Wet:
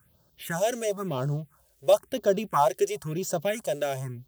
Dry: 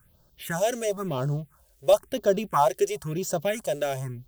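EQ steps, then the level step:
high-pass filter 73 Hz
−1.0 dB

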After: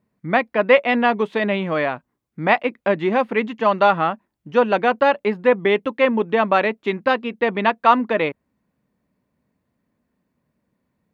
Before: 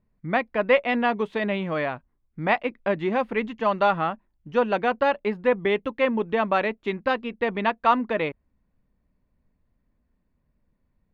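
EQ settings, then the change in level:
high-pass filter 150 Hz 12 dB per octave
+5.5 dB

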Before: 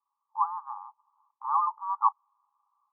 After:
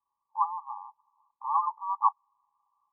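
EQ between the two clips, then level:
linear-phase brick-wall low-pass 1,200 Hz
spectral tilt −2 dB per octave
0.0 dB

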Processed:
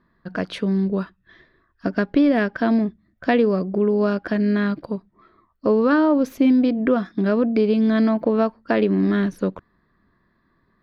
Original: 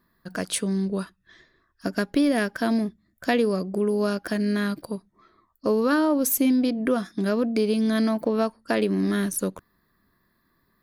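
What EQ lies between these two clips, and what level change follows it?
high-frequency loss of the air 280 metres
+5.0 dB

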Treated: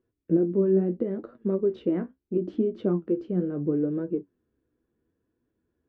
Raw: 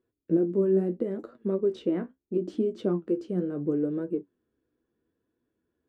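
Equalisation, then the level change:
low-pass filter 2,900 Hz 12 dB per octave
low-shelf EQ 150 Hz +8 dB
0.0 dB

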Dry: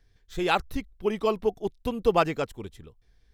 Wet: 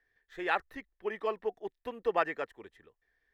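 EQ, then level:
three-way crossover with the lows and the highs turned down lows −18 dB, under 320 Hz, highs −13 dB, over 2,900 Hz
parametric band 1,800 Hz +15 dB 0.27 octaves
−6.5 dB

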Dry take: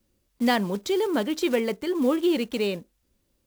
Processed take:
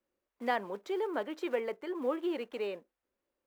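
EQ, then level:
three-way crossover with the lows and the highs turned down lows −21 dB, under 360 Hz, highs −16 dB, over 2,300 Hz
−5.5 dB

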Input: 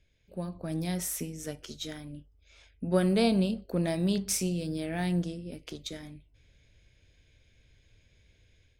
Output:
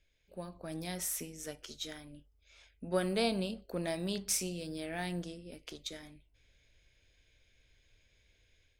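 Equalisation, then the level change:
parametric band 130 Hz −9.5 dB 2.8 octaves
−2.0 dB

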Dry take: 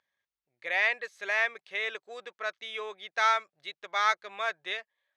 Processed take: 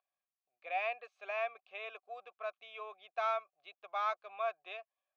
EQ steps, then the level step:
formant filter a
+3.5 dB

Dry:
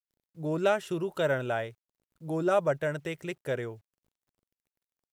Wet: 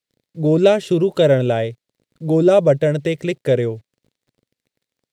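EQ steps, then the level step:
octave-band graphic EQ 125/250/500/2,000/4,000/8,000 Hz +8/+7/+11/+9/+11/+5 dB
dynamic equaliser 1,500 Hz, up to −8 dB, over −35 dBFS, Q 1
low-shelf EQ 390 Hz +6 dB
+2.0 dB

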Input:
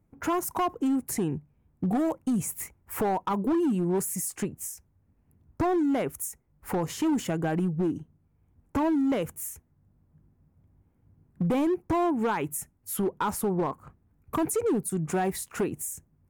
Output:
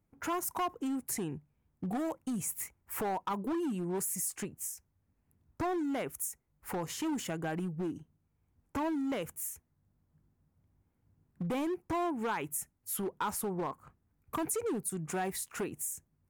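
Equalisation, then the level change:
tilt shelving filter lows −3.5 dB, about 900 Hz
−6.0 dB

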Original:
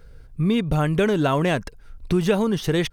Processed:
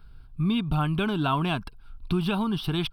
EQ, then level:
parametric band 68 Hz −4 dB 3 octaves
high-shelf EQ 10,000 Hz −6.5 dB
phaser with its sweep stopped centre 1,900 Hz, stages 6
0.0 dB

